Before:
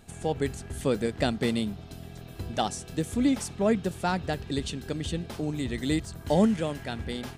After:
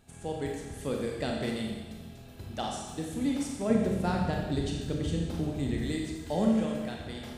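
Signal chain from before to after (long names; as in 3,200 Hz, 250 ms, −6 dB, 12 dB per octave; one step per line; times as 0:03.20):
0:03.70–0:05.82: low-shelf EQ 440 Hz +9.5 dB
four-comb reverb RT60 1.3 s, combs from 28 ms, DRR −0.5 dB
level −8 dB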